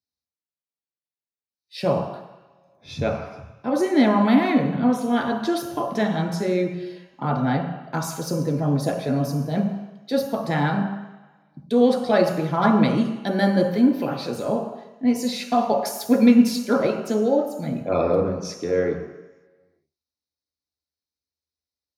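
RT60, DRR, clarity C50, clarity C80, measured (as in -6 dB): 1.1 s, 0.5 dB, 5.5 dB, 8.0 dB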